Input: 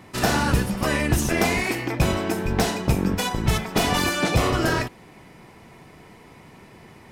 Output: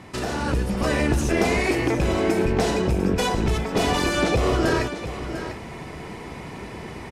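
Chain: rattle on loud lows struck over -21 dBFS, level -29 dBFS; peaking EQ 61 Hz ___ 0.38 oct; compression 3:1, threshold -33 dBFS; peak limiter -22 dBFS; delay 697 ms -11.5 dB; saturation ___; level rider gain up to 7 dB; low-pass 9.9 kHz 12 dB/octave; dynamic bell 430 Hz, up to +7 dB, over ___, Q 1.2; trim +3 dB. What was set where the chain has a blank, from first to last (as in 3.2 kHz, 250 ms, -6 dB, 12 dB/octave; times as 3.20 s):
+9.5 dB, -23 dBFS, -44 dBFS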